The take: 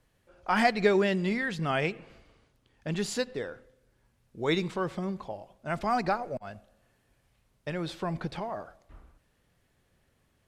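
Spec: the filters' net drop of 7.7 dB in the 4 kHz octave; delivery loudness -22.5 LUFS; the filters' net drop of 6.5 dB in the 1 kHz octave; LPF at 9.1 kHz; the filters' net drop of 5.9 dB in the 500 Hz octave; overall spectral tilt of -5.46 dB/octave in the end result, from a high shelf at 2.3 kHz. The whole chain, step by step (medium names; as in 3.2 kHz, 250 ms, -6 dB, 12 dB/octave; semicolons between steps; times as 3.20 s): low-pass 9.1 kHz; peaking EQ 500 Hz -6.5 dB; peaking EQ 1 kHz -5.5 dB; treble shelf 2.3 kHz -4 dB; peaking EQ 4 kHz -5.5 dB; trim +11.5 dB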